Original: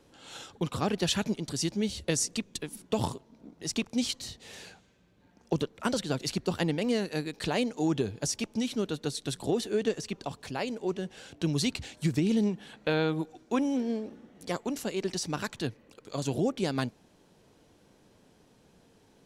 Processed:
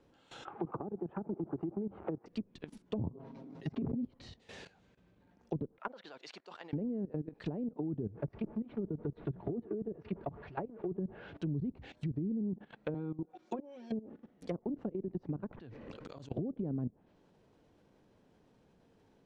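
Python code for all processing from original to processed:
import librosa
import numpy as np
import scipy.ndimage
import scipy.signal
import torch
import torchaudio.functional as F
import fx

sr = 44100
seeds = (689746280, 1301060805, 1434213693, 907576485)

y = fx.chain(x, sr, fx.zero_step(step_db=-38.5),
    fx.cabinet(low_hz=240.0, low_slope=12, high_hz=2100.0, hz=(250.0, 350.0, 530.0, 810.0, 1300.0, 1900.0), db=(-10, 5, -5, 8, 4, -7)),
    fx.band_squash(depth_pct=70), at=(0.45, 2.26))
y = fx.chain(y, sr, fx.highpass(hz=66.0, slope=12),
    fx.comb(ms=7.4, depth=0.99),
    fx.sustainer(db_per_s=30.0), at=(3.14, 4.05))
y = fx.chain(y, sr, fx.bandpass_edges(low_hz=730.0, high_hz=7400.0),
    fx.high_shelf(hz=4000.0, db=-6.5), at=(5.78, 6.73))
y = fx.chain(y, sr, fx.zero_step(step_db=-40.0),
    fx.lowpass(hz=2500.0, slope=12),
    fx.notch_comb(f0_hz=260.0), at=(8.14, 11.37))
y = fx.chain(y, sr, fx.riaa(side='recording'),
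    fx.comb(ms=5.5, depth=0.88), at=(12.94, 13.92))
y = fx.chain(y, sr, fx.high_shelf(hz=5400.0, db=-8.0),
    fx.auto_swell(attack_ms=150.0),
    fx.env_flatten(amount_pct=100), at=(15.51, 16.32))
y = fx.lowpass(y, sr, hz=2000.0, slope=6)
y = fx.level_steps(y, sr, step_db=17)
y = fx.env_lowpass_down(y, sr, base_hz=330.0, full_db=-32.5)
y = F.gain(torch.from_numpy(y), 1.0).numpy()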